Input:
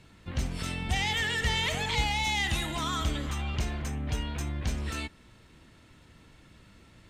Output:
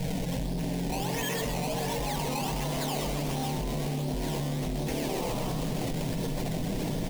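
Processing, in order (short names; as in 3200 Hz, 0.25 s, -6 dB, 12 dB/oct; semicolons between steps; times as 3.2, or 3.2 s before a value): LPF 1600 Hz 24 dB/oct; comb 6.4 ms, depth 86%; decimation with a swept rate 18×, swing 100% 1.4 Hz; soft clip -35.5 dBFS, distortion -7 dB; fixed phaser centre 330 Hz, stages 6; frequency-shifting echo 0.128 s, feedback 50%, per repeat +110 Hz, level -6 dB; fast leveller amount 100%; gain +7 dB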